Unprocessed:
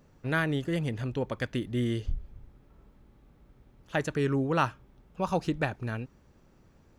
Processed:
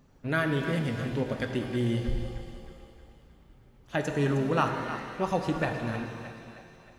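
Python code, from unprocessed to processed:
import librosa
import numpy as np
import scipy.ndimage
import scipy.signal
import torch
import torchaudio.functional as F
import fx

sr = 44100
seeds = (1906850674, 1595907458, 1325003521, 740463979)

y = fx.spec_quant(x, sr, step_db=15)
y = fx.echo_split(y, sr, split_hz=590.0, low_ms=136, high_ms=312, feedback_pct=52, wet_db=-11.5)
y = fx.rev_shimmer(y, sr, seeds[0], rt60_s=1.8, semitones=7, shimmer_db=-8, drr_db=5.5)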